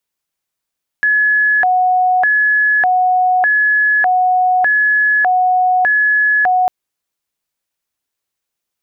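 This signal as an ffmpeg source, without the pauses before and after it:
ffmpeg -f lavfi -i "aevalsrc='0.335*sin(2*PI*(1217.5*t+482.5/0.83*(0.5-abs(mod(0.83*t,1)-0.5))))':duration=5.65:sample_rate=44100" out.wav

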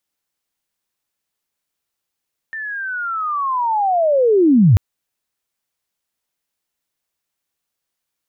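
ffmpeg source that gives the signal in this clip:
ffmpeg -f lavfi -i "aevalsrc='pow(10,(-24.5+18*t/2.24)/20)*sin(2*PI*(1800*t-1715*t*t/(2*2.24)))':duration=2.24:sample_rate=44100" out.wav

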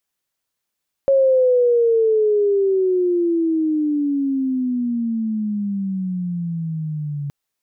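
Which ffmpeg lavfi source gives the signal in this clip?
ffmpeg -f lavfi -i "aevalsrc='pow(10,(-11-12*t/6.22)/20)*sin(2*PI*550*6.22/(-23.5*log(2)/12)*(exp(-23.5*log(2)/12*t/6.22)-1))':duration=6.22:sample_rate=44100" out.wav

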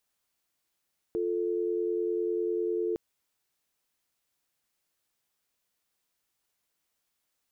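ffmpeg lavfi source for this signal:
ffmpeg -f lavfi -i "aevalsrc='0.0335*(sin(2*PI*350*t)+sin(2*PI*440*t))':duration=1.81:sample_rate=44100" out.wav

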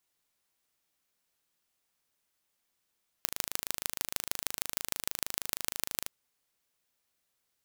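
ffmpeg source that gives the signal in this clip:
ffmpeg -f lavfi -i "aevalsrc='0.841*eq(mod(n,1677),0)*(0.5+0.5*eq(mod(n,6708),0))':duration=2.84:sample_rate=44100" out.wav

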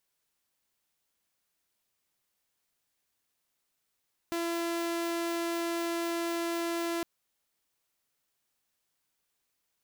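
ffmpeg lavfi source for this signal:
ffmpeg -f lavfi -i "aevalsrc='0.0422*(2*mod(338*t,1)-1)':duration=2.71:sample_rate=44100" out.wav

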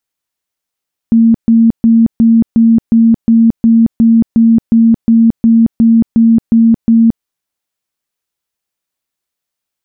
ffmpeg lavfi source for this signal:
ffmpeg -f lavfi -i "aevalsrc='0.668*sin(2*PI*228*mod(t,0.36))*lt(mod(t,0.36),51/228)':duration=6.12:sample_rate=44100" out.wav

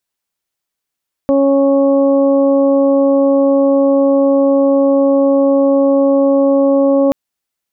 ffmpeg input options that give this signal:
ffmpeg -f lavfi -i "aevalsrc='0.266*sin(2*PI*276*t)+0.299*sin(2*PI*552*t)+0.0473*sin(2*PI*828*t)+0.0422*sin(2*PI*1104*t)':duration=5.83:sample_rate=44100" out.wav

